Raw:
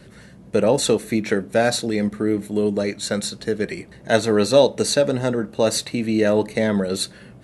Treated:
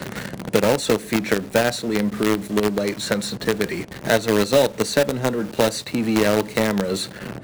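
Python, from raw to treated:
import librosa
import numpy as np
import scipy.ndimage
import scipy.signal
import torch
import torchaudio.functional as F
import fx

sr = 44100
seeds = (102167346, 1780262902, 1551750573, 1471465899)

p1 = scipy.signal.sosfilt(scipy.signal.butter(2, 62.0, 'highpass', fs=sr, output='sos'), x)
p2 = fx.high_shelf(p1, sr, hz=8800.0, db=-6.5)
p3 = fx.quant_companded(p2, sr, bits=2)
p4 = p2 + (p3 * librosa.db_to_amplitude(-6.5))
p5 = fx.band_squash(p4, sr, depth_pct=70)
y = p5 * librosa.db_to_amplitude(-6.0)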